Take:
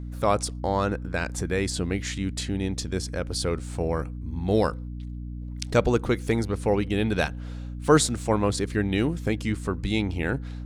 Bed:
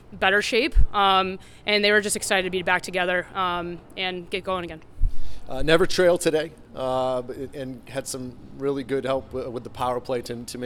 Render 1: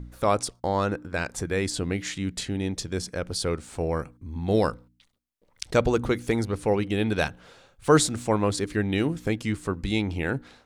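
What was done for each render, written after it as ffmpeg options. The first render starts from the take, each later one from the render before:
-af "bandreject=f=60:t=h:w=4,bandreject=f=120:t=h:w=4,bandreject=f=180:t=h:w=4,bandreject=f=240:t=h:w=4,bandreject=f=300:t=h:w=4"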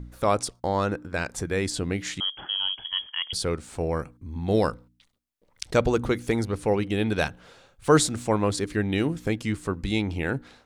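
-filter_complex "[0:a]asettb=1/sr,asplit=3[s0][s1][s2];[s0]atrim=end=2.204[s3];[s1]atrim=start=2.2:end=3.33,asetpts=PTS-STARTPTS,afade=t=in:d=0.004:c=qsin,afade=t=out:st=1.126:d=0.004:c=qsin,lowpass=f=2900:t=q:w=0.5098,lowpass=f=2900:t=q:w=0.6013,lowpass=f=2900:t=q:w=0.9,lowpass=f=2900:t=q:w=2.563,afreqshift=-3400[s4];[s2]atrim=start=3.326[s5];[s3][s4]acrossfade=d=0.004:c1=hsin:c2=qsin[s6];[s6][s5]acrossfade=d=0.004:c1=qsin:c2=hsin"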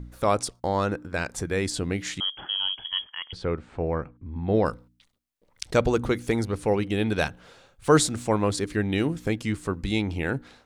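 -filter_complex "[0:a]asplit=3[s0][s1][s2];[s0]afade=t=out:st=3.04:d=0.02[s3];[s1]lowpass=2200,afade=t=in:st=3.04:d=0.02,afade=t=out:st=4.65:d=0.02[s4];[s2]afade=t=in:st=4.65:d=0.02[s5];[s3][s4][s5]amix=inputs=3:normalize=0"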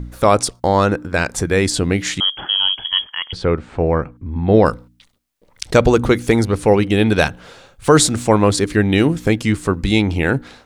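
-af "alimiter=level_in=3.35:limit=0.891:release=50:level=0:latency=1"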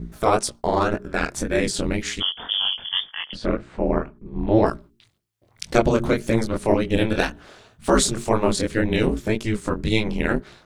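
-af "flanger=delay=17:depth=7.8:speed=1.9,aeval=exprs='val(0)*sin(2*PI*110*n/s)':c=same"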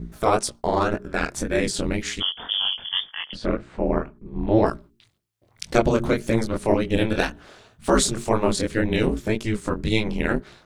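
-af "volume=0.891"

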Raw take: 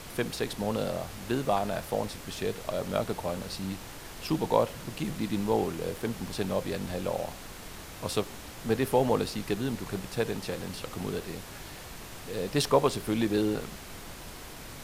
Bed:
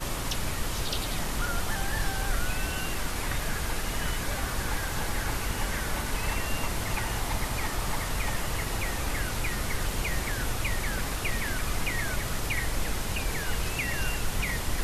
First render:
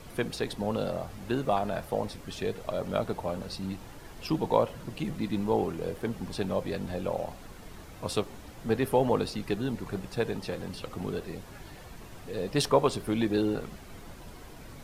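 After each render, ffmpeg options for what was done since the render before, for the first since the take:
-af "afftdn=nr=9:nf=-44"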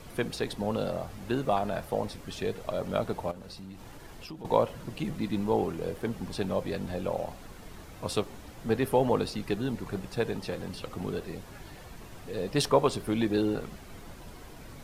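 -filter_complex "[0:a]asettb=1/sr,asplit=3[s0][s1][s2];[s0]atrim=end=3.314[s3];[s1]atrim=start=3.31:end=4.45,asetpts=PTS-STARTPTS,afade=t=in:d=0.004:c=qsin,afade=t=out:st=1.136:d=0.004:c=qsin,acompressor=threshold=0.00891:ratio=4:attack=3.2:release=140:knee=1:detection=peak[s4];[s2]atrim=start=4.446[s5];[s3][s4]acrossfade=d=0.004:c1=hsin:c2=qsin[s6];[s6][s5]acrossfade=d=0.004:c1=qsin:c2=hsin"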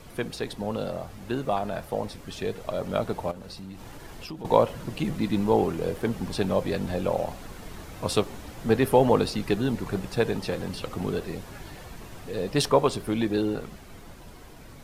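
-af "dynaudnorm=f=590:g=11:m=2"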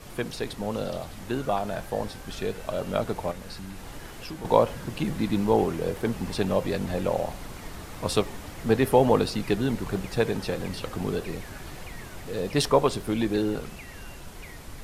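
-filter_complex "[1:a]volume=0.188[s0];[0:a][s0]amix=inputs=2:normalize=0"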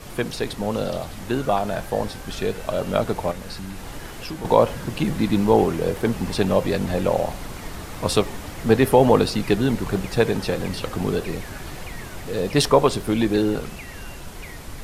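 -af "volume=1.88,alimiter=limit=0.794:level=0:latency=1"

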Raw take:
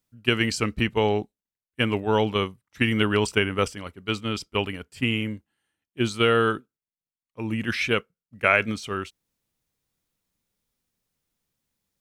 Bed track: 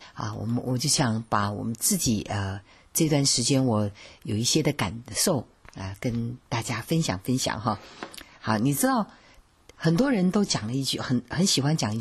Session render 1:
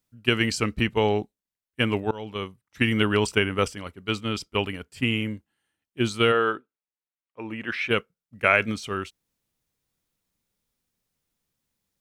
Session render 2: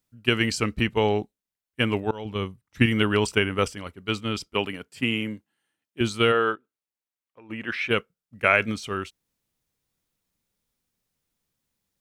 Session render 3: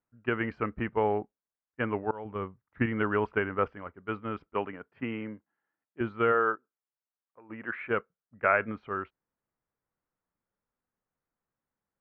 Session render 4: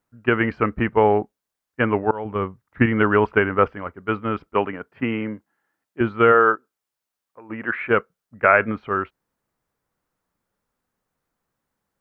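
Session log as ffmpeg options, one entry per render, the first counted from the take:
-filter_complex "[0:a]asplit=3[s0][s1][s2];[s0]afade=t=out:st=6.31:d=0.02[s3];[s1]bass=f=250:g=-13,treble=f=4000:g=-15,afade=t=in:st=6.31:d=0.02,afade=t=out:st=7.89:d=0.02[s4];[s2]afade=t=in:st=7.89:d=0.02[s5];[s3][s4][s5]amix=inputs=3:normalize=0,asplit=2[s6][s7];[s6]atrim=end=2.11,asetpts=PTS-STARTPTS,afade=t=out:st=2.106:d=0.004:c=hsin:silence=0.0749894[s8];[s7]atrim=start=2.11,asetpts=PTS-STARTPTS,afade=t=in:d=0.71:silence=0.0749894[s9];[s8][s9]concat=n=2:v=0:a=1"
-filter_complex "[0:a]asettb=1/sr,asplit=3[s0][s1][s2];[s0]atrim=end=2.254[s3];[s1]atrim=start=2.25:end=2.86,asetpts=PTS-STARTPTS,afade=t=in:d=0.004:c=qsin,afade=t=out:st=0.606:d=0.004:c=qsin,lowshelf=f=250:g=8.5[s4];[s2]atrim=start=2.856[s5];[s3][s4]acrossfade=d=0.004:c1=hsin:c2=qsin[s6];[s6][s5]acrossfade=d=0.004:c1=qsin:c2=hsin,asettb=1/sr,asplit=3[s7][s8][s9];[s7]atrim=end=4.544[s10];[s8]atrim=start=4.54:end=6.01,asetpts=PTS-STARTPTS,afade=t=in:d=0.004:c=qsin,afade=t=out:st=1.466:d=0.004:c=qsin,highpass=140[s11];[s9]atrim=start=6.006[s12];[s10][s11]acrossfade=d=0.004:c1=hsin:c2=qsin[s13];[s13][s12]acrossfade=d=0.004:c1=qsin:c2=hsin,asplit=3[s14][s15][s16];[s14]afade=t=out:st=6.54:d=0.02[s17];[s15]acompressor=threshold=0.00501:ratio=6:attack=3.2:release=140:knee=1:detection=peak,afade=t=in:st=6.54:d=0.02,afade=t=out:st=7.49:d=0.02[s18];[s16]afade=t=in:st=7.49:d=0.02[s19];[s17][s18][s19]amix=inputs=3:normalize=0"
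-af "lowpass=f=1600:w=0.5412,lowpass=f=1600:w=1.3066,lowshelf=f=390:g=-10.5"
-af "volume=3.35,alimiter=limit=0.891:level=0:latency=1"

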